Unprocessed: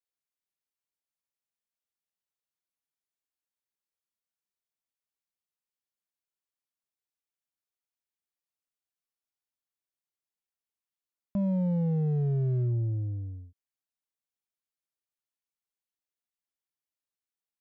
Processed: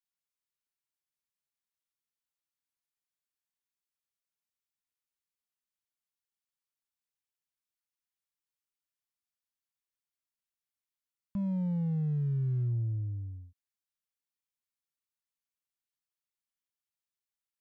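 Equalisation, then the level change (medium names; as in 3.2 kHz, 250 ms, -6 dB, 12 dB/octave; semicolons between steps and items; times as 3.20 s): Butterworth band-stop 680 Hz, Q 3.2; peaking EQ 430 Hz -12 dB 1.1 oct; -2.0 dB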